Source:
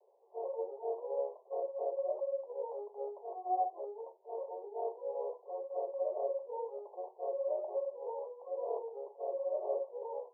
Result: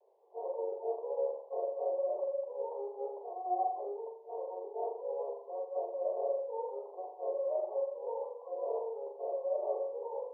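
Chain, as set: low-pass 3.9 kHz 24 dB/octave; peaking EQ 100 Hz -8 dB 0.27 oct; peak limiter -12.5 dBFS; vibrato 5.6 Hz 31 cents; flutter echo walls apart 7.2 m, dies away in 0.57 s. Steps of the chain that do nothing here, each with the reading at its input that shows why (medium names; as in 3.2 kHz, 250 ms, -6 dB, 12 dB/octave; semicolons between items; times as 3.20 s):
low-pass 3.9 kHz: input has nothing above 1 kHz; peaking EQ 100 Hz: input has nothing below 340 Hz; peak limiter -12.5 dBFS: peak at its input -23.0 dBFS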